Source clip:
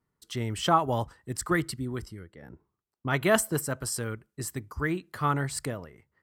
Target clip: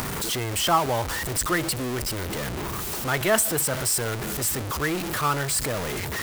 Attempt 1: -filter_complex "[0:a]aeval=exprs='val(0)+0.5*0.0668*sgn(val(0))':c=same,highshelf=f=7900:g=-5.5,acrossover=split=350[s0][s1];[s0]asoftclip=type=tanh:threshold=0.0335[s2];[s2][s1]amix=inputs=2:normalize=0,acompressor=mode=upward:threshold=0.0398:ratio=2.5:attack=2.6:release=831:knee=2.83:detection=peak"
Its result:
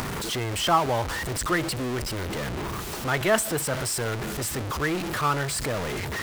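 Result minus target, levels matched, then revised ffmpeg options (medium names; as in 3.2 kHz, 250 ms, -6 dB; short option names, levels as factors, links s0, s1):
8 kHz band -3.5 dB
-filter_complex "[0:a]aeval=exprs='val(0)+0.5*0.0668*sgn(val(0))':c=same,highshelf=f=7900:g=4.5,acrossover=split=350[s0][s1];[s0]asoftclip=type=tanh:threshold=0.0335[s2];[s2][s1]amix=inputs=2:normalize=0,acompressor=mode=upward:threshold=0.0398:ratio=2.5:attack=2.6:release=831:knee=2.83:detection=peak"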